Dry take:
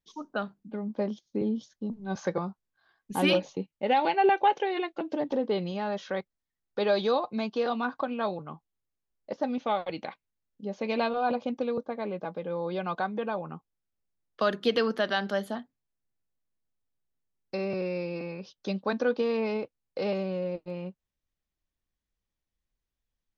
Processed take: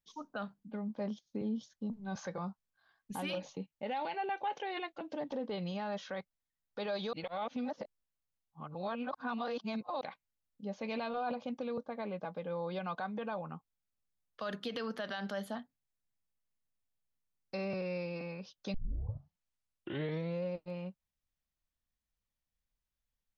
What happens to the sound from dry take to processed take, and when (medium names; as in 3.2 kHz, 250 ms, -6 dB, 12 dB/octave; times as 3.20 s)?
7.13–10.01 s: reverse
18.74 s: tape start 1.71 s
whole clip: peak limiter -24 dBFS; peaking EQ 360 Hz -7.5 dB 0.59 oct; trim -3.5 dB